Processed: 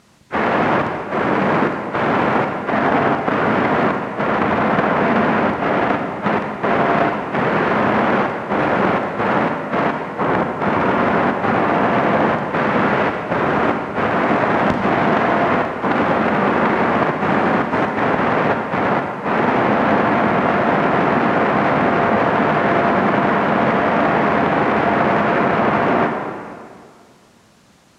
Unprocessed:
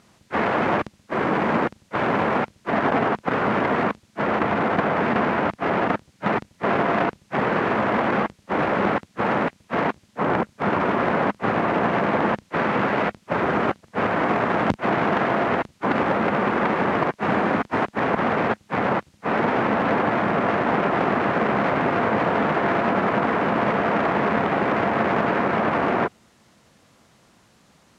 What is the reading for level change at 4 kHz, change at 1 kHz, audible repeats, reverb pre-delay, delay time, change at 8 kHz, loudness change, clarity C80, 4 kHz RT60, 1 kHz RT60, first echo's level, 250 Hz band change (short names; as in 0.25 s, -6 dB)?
+5.0 dB, +5.5 dB, none, 39 ms, none, n/a, +5.5 dB, 5.5 dB, 1.6 s, 2.0 s, none, +5.5 dB